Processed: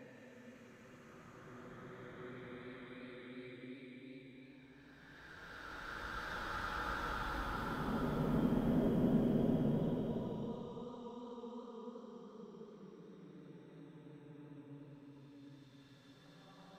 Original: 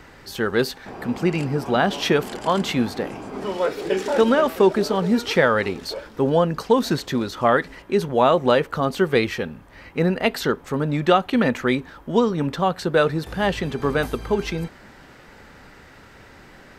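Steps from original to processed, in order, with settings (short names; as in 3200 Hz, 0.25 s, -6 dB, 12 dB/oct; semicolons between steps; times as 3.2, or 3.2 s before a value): flipped gate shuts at -21 dBFS, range -35 dB; Paulstretch 16×, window 0.25 s, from 11.52; warbling echo 85 ms, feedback 76%, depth 135 cents, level -11 dB; gain +2.5 dB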